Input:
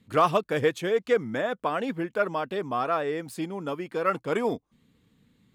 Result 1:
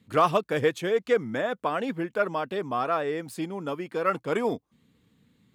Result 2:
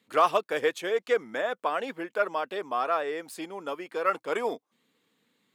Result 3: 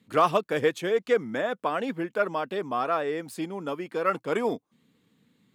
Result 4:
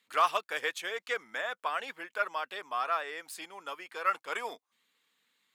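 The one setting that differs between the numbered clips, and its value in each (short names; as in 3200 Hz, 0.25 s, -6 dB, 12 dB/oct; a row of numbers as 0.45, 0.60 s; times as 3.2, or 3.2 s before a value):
HPF, cutoff: 55, 430, 160, 1100 Hz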